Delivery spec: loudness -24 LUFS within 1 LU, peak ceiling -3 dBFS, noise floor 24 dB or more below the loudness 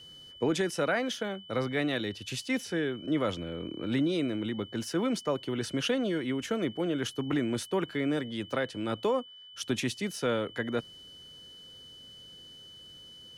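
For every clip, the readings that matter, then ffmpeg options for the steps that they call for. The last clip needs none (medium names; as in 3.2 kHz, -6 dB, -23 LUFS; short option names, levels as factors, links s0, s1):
steady tone 3 kHz; tone level -48 dBFS; loudness -31.5 LUFS; peak level -18.0 dBFS; loudness target -24.0 LUFS
-> -af "bandreject=f=3000:w=30"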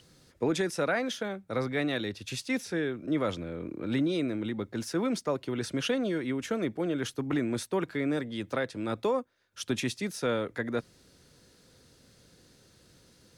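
steady tone not found; loudness -31.5 LUFS; peak level -18.5 dBFS; loudness target -24.0 LUFS
-> -af "volume=2.37"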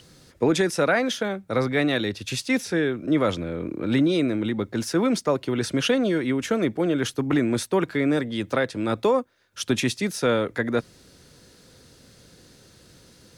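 loudness -24.0 LUFS; peak level -11.0 dBFS; noise floor -54 dBFS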